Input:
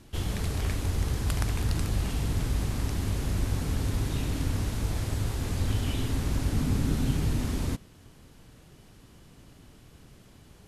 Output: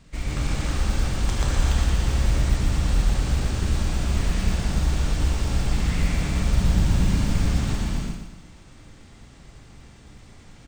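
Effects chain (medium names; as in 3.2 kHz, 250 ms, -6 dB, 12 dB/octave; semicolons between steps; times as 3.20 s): pitch shift -6.5 st; gated-style reverb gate 420 ms flat, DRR -5 dB; modulation noise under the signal 33 dB; on a send: feedback delay 118 ms, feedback 41%, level -6.5 dB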